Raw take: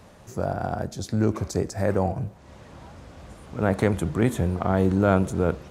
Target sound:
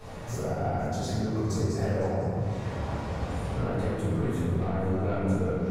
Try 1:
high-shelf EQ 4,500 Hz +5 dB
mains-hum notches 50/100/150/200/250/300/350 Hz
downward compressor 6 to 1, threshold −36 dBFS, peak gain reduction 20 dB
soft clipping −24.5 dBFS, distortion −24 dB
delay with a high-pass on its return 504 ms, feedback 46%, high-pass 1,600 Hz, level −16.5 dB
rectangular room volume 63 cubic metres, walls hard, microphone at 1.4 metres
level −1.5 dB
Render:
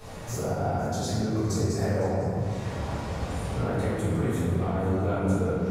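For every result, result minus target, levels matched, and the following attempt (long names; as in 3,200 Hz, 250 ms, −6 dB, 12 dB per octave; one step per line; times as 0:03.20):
soft clipping: distortion −11 dB; 8,000 Hz band +4.0 dB
high-shelf EQ 4,500 Hz +5 dB
mains-hum notches 50/100/150/200/250/300/350 Hz
downward compressor 6 to 1, threshold −36 dBFS, peak gain reduction 20 dB
soft clipping −32.5 dBFS, distortion −13 dB
delay with a high-pass on its return 504 ms, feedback 46%, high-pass 1,600 Hz, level −16.5 dB
rectangular room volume 63 cubic metres, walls hard, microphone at 1.4 metres
level −1.5 dB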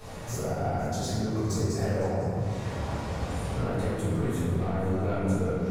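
8,000 Hz band +4.5 dB
high-shelf EQ 4,500 Hz −2.5 dB
mains-hum notches 50/100/150/200/250/300/350 Hz
downward compressor 6 to 1, threshold −36 dBFS, peak gain reduction 20 dB
soft clipping −32.5 dBFS, distortion −13 dB
delay with a high-pass on its return 504 ms, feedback 46%, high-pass 1,600 Hz, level −16.5 dB
rectangular room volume 63 cubic metres, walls hard, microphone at 1.4 metres
level −1.5 dB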